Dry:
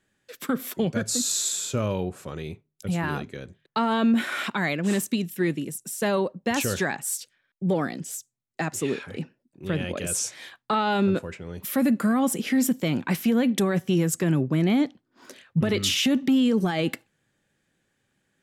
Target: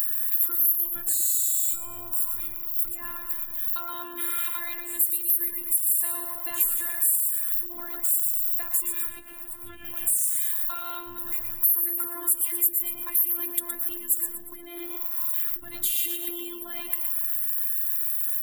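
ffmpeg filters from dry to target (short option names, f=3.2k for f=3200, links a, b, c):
-filter_complex "[0:a]aeval=exprs='val(0)+0.5*0.0224*sgn(val(0))':c=same,asplit=6[a][b][c][d][e][f];[b]adelay=117,afreqshift=80,volume=-7dB[g];[c]adelay=234,afreqshift=160,volume=-14.3dB[h];[d]adelay=351,afreqshift=240,volume=-21.7dB[i];[e]adelay=468,afreqshift=320,volume=-29dB[j];[f]adelay=585,afreqshift=400,volume=-36.3dB[k];[a][g][h][i][j][k]amix=inputs=6:normalize=0,asettb=1/sr,asplit=3[l][m][n];[l]atrim=end=9.094[o];[m]atrim=start=9.09:end=9.85,asetpts=PTS-STARTPTS,afade=t=in:d=0.004:c=qsin,afade=t=out:st=0.756:d=0.004:c=qsin,acrossover=split=9400[p][q];[q]acompressor=threshold=-56dB:ratio=4:attack=1:release=60[r];[p][r]amix=inputs=2:normalize=0[s];[n]atrim=start=9.846[t];[o][s]acrossfade=d=0.004:c1=hsin:c2=qsin[u];[u][t]acrossfade=d=0.004:c1=qsin:c2=hsin,bass=f=250:g=9,treble=f=4k:g=0,aexciter=amount=15.5:drive=6.5:freq=8.1k,equalizer=f=125:t=o:w=1:g=10,equalizer=f=250:t=o:w=1:g=-6,equalizer=f=500:t=o:w=1:g=-9,equalizer=f=1k:t=o:w=1:g=11,equalizer=f=2k:t=o:w=1:g=4,equalizer=f=4k:t=o:w=1:g=6,equalizer=f=8k:t=o:w=1:g=-7,acompressor=threshold=-21dB:ratio=3,afftfilt=real='hypot(re,im)*cos(PI*b)':imag='0':win_size=512:overlap=0.75,afftdn=nr=13:nf=-36,crystalizer=i=2.5:c=0,volume=-11.5dB"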